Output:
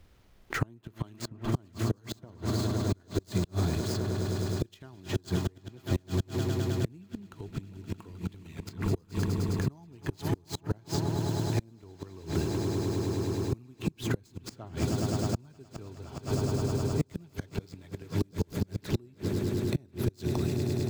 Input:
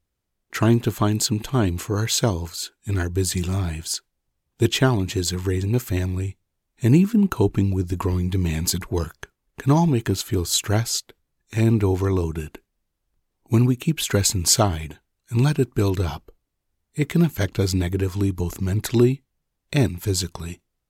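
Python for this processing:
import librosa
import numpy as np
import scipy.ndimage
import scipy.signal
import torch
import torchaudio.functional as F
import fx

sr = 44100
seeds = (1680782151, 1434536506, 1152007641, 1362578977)

y = scipy.signal.medfilt(x, 5)
y = fx.echo_swell(y, sr, ms=104, loudest=8, wet_db=-16.5)
y = fx.gate_flip(y, sr, shuts_db=-13.0, range_db=-34)
y = fx.dynamic_eq(y, sr, hz=2400.0, q=0.72, threshold_db=-48.0, ratio=4.0, max_db=-6)
y = fx.band_squash(y, sr, depth_pct=70)
y = y * 10.0 ** (-2.0 / 20.0)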